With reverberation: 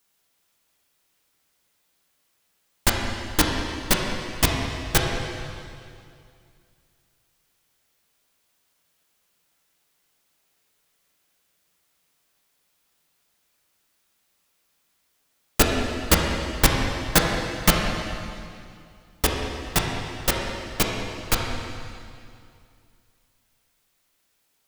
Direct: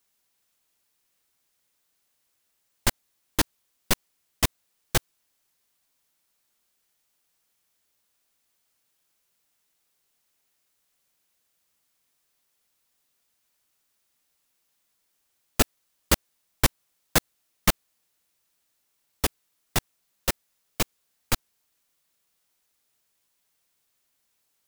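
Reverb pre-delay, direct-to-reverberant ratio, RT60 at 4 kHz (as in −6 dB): 5 ms, −1.0 dB, 2.2 s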